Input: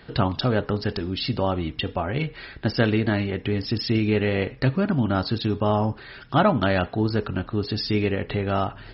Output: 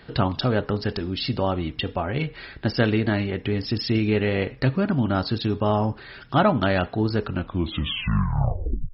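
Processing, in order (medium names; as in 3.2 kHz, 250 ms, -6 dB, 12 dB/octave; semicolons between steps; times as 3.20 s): tape stop on the ending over 1.60 s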